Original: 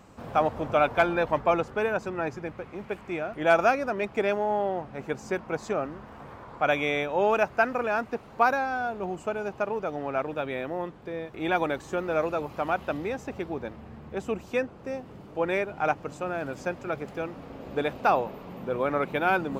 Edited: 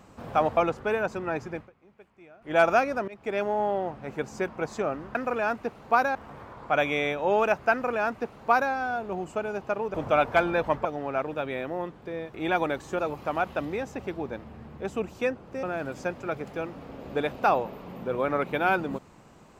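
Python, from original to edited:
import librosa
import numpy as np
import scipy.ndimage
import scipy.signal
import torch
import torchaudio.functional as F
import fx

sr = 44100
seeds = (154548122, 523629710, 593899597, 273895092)

y = fx.edit(x, sr, fx.move(start_s=0.57, length_s=0.91, to_s=9.85),
    fx.fade_down_up(start_s=2.47, length_s=0.99, db=-20.0, fade_s=0.14),
    fx.fade_in_from(start_s=3.99, length_s=0.4, floor_db=-20.5),
    fx.duplicate(start_s=7.63, length_s=1.0, to_s=6.06),
    fx.cut(start_s=11.99, length_s=0.32),
    fx.cut(start_s=14.95, length_s=1.29), tone=tone)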